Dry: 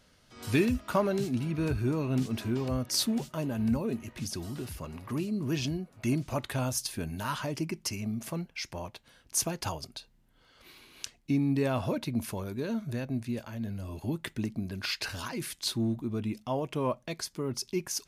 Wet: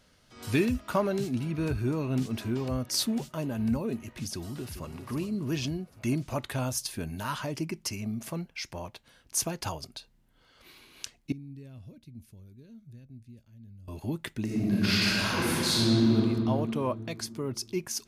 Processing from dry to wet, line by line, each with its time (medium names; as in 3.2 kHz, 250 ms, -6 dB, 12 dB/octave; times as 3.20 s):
4.31–4.95 s: echo throw 400 ms, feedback 45%, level -10 dB
11.32–13.88 s: amplifier tone stack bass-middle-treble 10-0-1
14.44–16.15 s: reverb throw, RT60 2.7 s, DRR -9 dB